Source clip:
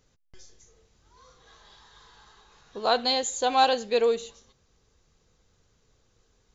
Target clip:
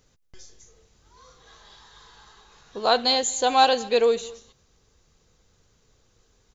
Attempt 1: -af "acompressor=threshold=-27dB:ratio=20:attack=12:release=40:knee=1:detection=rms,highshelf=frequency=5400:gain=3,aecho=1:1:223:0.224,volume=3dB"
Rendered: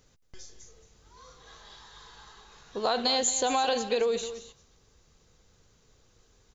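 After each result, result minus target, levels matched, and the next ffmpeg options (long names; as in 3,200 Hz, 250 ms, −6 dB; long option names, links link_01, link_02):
downward compressor: peak gain reduction +12 dB; echo-to-direct +9.5 dB
-af "highshelf=frequency=5400:gain=3,aecho=1:1:223:0.224,volume=3dB"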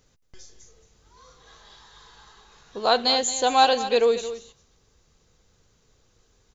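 echo-to-direct +9.5 dB
-af "highshelf=frequency=5400:gain=3,aecho=1:1:223:0.075,volume=3dB"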